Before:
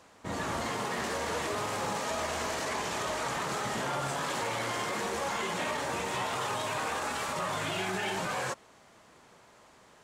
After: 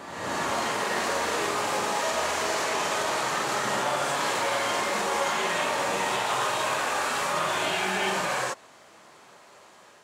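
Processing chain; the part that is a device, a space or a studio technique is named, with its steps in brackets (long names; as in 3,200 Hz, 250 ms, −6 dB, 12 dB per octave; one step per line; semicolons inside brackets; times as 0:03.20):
ghost voice (reversed playback; convolution reverb RT60 1.3 s, pre-delay 17 ms, DRR −1 dB; reversed playback; high-pass filter 320 Hz 6 dB per octave)
level +3.5 dB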